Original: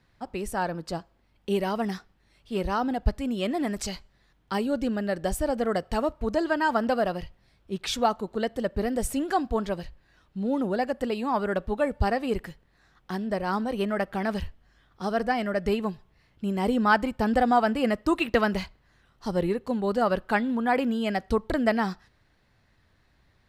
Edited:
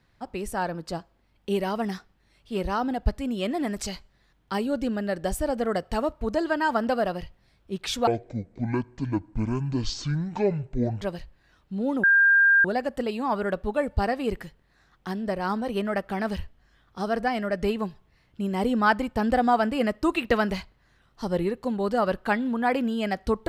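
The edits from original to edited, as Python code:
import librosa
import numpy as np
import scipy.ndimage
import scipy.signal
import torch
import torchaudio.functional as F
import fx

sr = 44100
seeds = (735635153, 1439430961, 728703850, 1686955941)

y = fx.edit(x, sr, fx.speed_span(start_s=8.07, length_s=1.59, speed=0.54),
    fx.insert_tone(at_s=10.68, length_s=0.61, hz=1600.0, db=-14.5), tone=tone)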